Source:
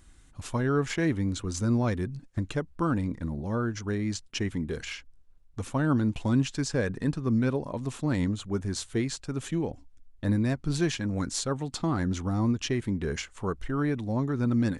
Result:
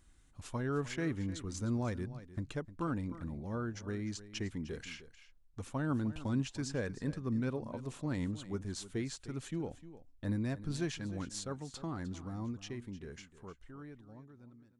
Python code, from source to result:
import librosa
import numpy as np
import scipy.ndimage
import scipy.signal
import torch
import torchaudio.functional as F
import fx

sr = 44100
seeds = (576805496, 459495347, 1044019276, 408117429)

y = fx.fade_out_tail(x, sr, length_s=4.18)
y = y + 10.0 ** (-15.0 / 20.0) * np.pad(y, (int(305 * sr / 1000.0), 0))[:len(y)]
y = y * 10.0 ** (-9.0 / 20.0)